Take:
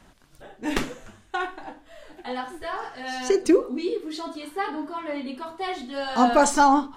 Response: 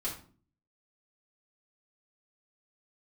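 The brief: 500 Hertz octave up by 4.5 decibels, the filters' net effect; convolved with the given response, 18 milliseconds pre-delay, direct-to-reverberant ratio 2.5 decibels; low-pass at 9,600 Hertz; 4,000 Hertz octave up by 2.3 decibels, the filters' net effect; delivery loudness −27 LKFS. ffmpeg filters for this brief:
-filter_complex "[0:a]lowpass=9600,equalizer=frequency=500:width_type=o:gain=6,equalizer=frequency=4000:width_type=o:gain=3,asplit=2[link_01][link_02];[1:a]atrim=start_sample=2205,adelay=18[link_03];[link_02][link_03]afir=irnorm=-1:irlink=0,volume=-5.5dB[link_04];[link_01][link_04]amix=inputs=2:normalize=0,volume=-6.5dB"

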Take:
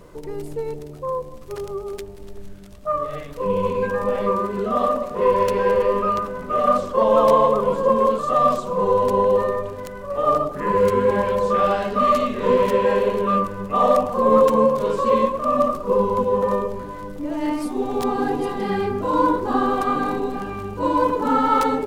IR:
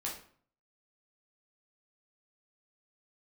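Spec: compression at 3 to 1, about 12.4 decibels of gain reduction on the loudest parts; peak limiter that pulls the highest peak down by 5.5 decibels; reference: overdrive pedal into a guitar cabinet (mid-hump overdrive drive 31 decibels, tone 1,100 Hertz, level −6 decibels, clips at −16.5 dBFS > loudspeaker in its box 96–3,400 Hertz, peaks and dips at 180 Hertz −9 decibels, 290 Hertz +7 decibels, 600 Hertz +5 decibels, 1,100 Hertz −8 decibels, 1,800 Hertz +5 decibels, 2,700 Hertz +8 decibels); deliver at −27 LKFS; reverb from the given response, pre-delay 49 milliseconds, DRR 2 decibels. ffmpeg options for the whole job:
-filter_complex "[0:a]acompressor=threshold=-29dB:ratio=3,alimiter=limit=-22dB:level=0:latency=1,asplit=2[link_01][link_02];[1:a]atrim=start_sample=2205,adelay=49[link_03];[link_02][link_03]afir=irnorm=-1:irlink=0,volume=-3.5dB[link_04];[link_01][link_04]amix=inputs=2:normalize=0,asplit=2[link_05][link_06];[link_06]highpass=frequency=720:poles=1,volume=31dB,asoftclip=type=tanh:threshold=-16.5dB[link_07];[link_05][link_07]amix=inputs=2:normalize=0,lowpass=frequency=1100:poles=1,volume=-6dB,highpass=96,equalizer=frequency=180:width_type=q:width=4:gain=-9,equalizer=frequency=290:width_type=q:width=4:gain=7,equalizer=frequency=600:width_type=q:width=4:gain=5,equalizer=frequency=1100:width_type=q:width=4:gain=-8,equalizer=frequency=1800:width_type=q:width=4:gain=5,equalizer=frequency=2700:width_type=q:width=4:gain=8,lowpass=frequency=3400:width=0.5412,lowpass=frequency=3400:width=1.3066,volume=-3.5dB"

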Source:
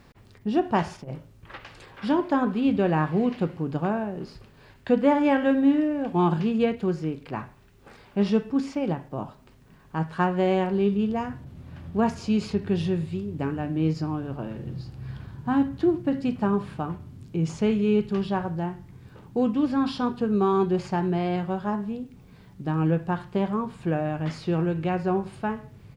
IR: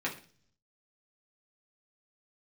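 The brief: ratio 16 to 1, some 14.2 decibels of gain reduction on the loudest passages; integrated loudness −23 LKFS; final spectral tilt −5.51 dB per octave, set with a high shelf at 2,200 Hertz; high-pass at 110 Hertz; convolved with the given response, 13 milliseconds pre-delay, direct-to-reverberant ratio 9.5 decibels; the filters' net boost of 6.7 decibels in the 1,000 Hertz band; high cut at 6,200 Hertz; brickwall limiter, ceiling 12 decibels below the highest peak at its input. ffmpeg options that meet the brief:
-filter_complex "[0:a]highpass=110,lowpass=6200,equalizer=frequency=1000:width_type=o:gain=7,highshelf=frequency=2200:gain=7.5,acompressor=threshold=-27dB:ratio=16,alimiter=level_in=1dB:limit=-24dB:level=0:latency=1,volume=-1dB,asplit=2[link_01][link_02];[1:a]atrim=start_sample=2205,adelay=13[link_03];[link_02][link_03]afir=irnorm=-1:irlink=0,volume=-15.5dB[link_04];[link_01][link_04]amix=inputs=2:normalize=0,volume=12dB"

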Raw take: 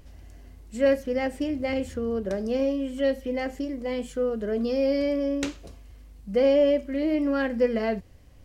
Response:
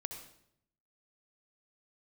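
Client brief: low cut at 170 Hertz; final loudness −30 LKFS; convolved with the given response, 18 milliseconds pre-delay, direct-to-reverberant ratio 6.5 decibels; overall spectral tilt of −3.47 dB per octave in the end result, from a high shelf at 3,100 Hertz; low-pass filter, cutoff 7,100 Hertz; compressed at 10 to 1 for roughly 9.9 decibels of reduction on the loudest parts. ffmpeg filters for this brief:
-filter_complex "[0:a]highpass=170,lowpass=7100,highshelf=frequency=3100:gain=8,acompressor=threshold=-26dB:ratio=10,asplit=2[link_01][link_02];[1:a]atrim=start_sample=2205,adelay=18[link_03];[link_02][link_03]afir=irnorm=-1:irlink=0,volume=-5dB[link_04];[link_01][link_04]amix=inputs=2:normalize=0"

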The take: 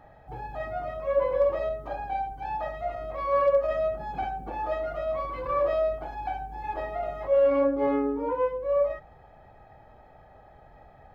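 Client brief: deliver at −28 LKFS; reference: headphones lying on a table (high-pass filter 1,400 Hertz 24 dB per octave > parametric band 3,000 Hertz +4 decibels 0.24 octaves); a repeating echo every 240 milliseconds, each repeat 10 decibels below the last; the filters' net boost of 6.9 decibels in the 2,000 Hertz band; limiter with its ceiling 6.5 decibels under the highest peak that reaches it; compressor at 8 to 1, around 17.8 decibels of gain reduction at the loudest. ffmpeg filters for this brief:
ffmpeg -i in.wav -af "equalizer=frequency=2000:width_type=o:gain=8.5,acompressor=threshold=-37dB:ratio=8,alimiter=level_in=10.5dB:limit=-24dB:level=0:latency=1,volume=-10.5dB,highpass=frequency=1400:width=0.5412,highpass=frequency=1400:width=1.3066,equalizer=frequency=3000:width_type=o:width=0.24:gain=4,aecho=1:1:240|480|720|960:0.316|0.101|0.0324|0.0104,volume=23.5dB" out.wav

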